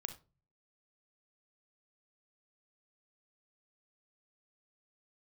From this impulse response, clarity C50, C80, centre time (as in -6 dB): 12.0 dB, 18.5 dB, 7 ms